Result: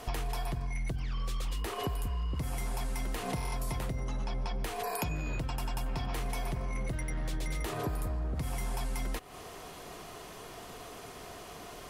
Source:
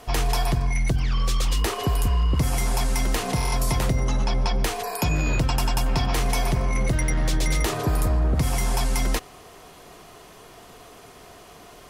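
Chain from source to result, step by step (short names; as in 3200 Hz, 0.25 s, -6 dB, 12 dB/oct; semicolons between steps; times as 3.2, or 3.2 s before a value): dynamic EQ 5800 Hz, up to -5 dB, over -44 dBFS, Q 1.2; compressor 12:1, threshold -31 dBFS, peak gain reduction 14 dB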